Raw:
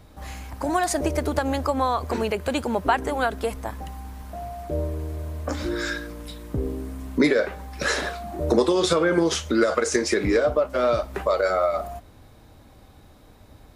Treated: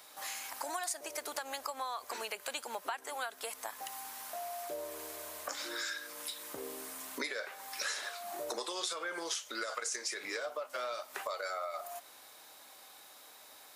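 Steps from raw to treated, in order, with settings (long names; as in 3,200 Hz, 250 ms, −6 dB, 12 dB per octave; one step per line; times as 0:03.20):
high-pass filter 810 Hz 12 dB per octave
high-shelf EQ 4,100 Hz +11 dB
downward compressor 4 to 1, threshold −38 dBFS, peak gain reduction 19 dB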